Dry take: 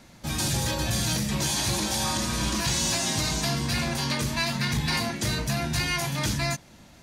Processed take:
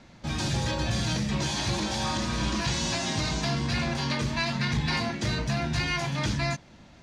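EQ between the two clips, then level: air absorption 140 m; high shelf 6700 Hz +6 dB; 0.0 dB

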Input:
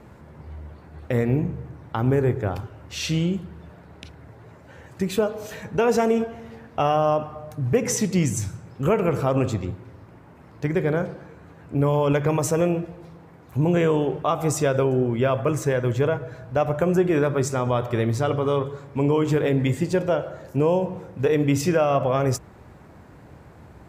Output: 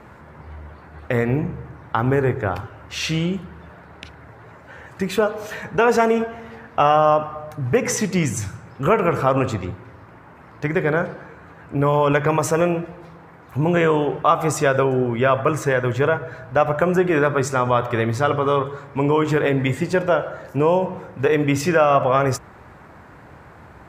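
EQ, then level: bell 1400 Hz +9.5 dB 2.1 oct; 0.0 dB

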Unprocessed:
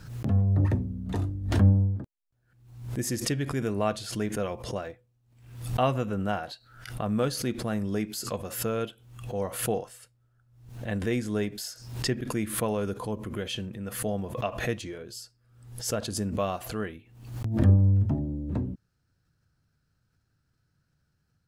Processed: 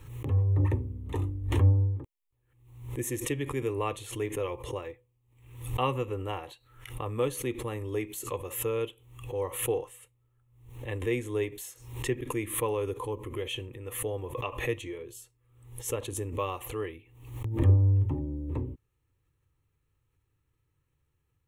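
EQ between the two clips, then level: fixed phaser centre 1000 Hz, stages 8; +1.5 dB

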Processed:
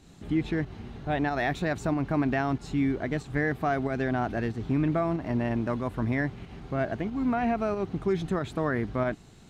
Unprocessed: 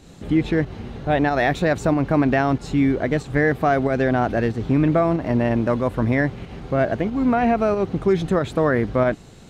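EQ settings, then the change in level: bell 520 Hz -7.5 dB 0.34 oct; -7.5 dB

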